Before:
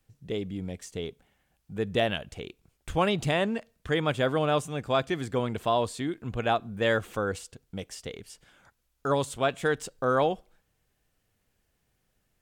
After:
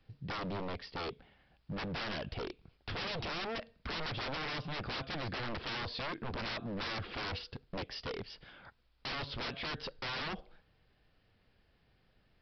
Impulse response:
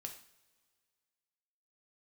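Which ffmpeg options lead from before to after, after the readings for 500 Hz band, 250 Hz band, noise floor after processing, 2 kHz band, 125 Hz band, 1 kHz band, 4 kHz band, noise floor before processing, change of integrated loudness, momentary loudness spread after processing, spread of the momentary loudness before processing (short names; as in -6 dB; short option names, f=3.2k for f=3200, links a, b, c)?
-15.5 dB, -11.5 dB, -71 dBFS, -6.5 dB, -9.5 dB, -11.0 dB, -3.0 dB, -75 dBFS, -10.5 dB, 7 LU, 14 LU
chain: -af "acompressor=threshold=-27dB:ratio=6,aresample=11025,aeval=exprs='0.0126*(abs(mod(val(0)/0.0126+3,4)-2)-1)':c=same,aresample=44100,volume=4.5dB"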